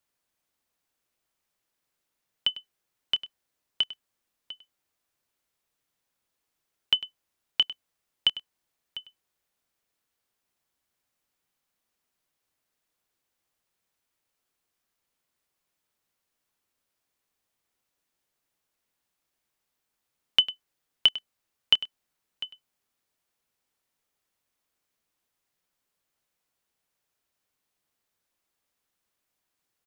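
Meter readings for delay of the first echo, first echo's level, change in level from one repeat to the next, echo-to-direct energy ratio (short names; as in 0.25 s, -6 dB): 0.699 s, -15.5 dB, no steady repeat, -15.5 dB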